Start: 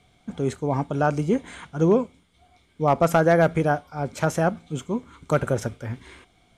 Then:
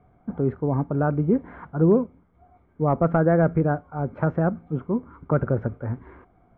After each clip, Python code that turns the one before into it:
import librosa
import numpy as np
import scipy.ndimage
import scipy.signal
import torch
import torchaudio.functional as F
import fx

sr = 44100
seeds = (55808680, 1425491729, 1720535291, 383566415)

y = scipy.signal.sosfilt(scipy.signal.butter(4, 1400.0, 'lowpass', fs=sr, output='sos'), x)
y = fx.dynamic_eq(y, sr, hz=830.0, q=0.87, threshold_db=-34.0, ratio=4.0, max_db=-8)
y = y * 10.0 ** (3.0 / 20.0)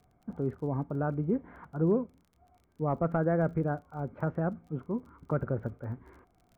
y = fx.dmg_crackle(x, sr, seeds[0], per_s=32.0, level_db=-42.0)
y = y * 10.0 ** (-8.5 / 20.0)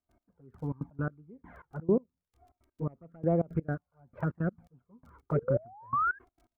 y = fx.env_flanger(x, sr, rest_ms=3.3, full_db=-23.0)
y = fx.spec_paint(y, sr, seeds[1], shape='rise', start_s=5.35, length_s=0.84, low_hz=410.0, high_hz=1700.0, level_db=-29.0)
y = fx.step_gate(y, sr, bpm=167, pattern='.x....xx.x', floor_db=-24.0, edge_ms=4.5)
y = y * 10.0 ** (2.0 / 20.0)